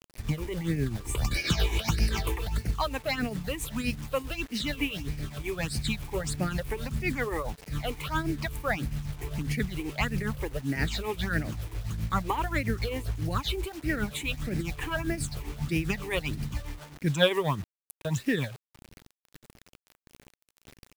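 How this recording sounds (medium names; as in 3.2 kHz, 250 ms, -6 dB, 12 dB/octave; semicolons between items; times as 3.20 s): phasing stages 8, 1.6 Hz, lowest notch 180–1100 Hz; a quantiser's noise floor 8-bit, dither none; tremolo triangle 7.5 Hz, depth 70%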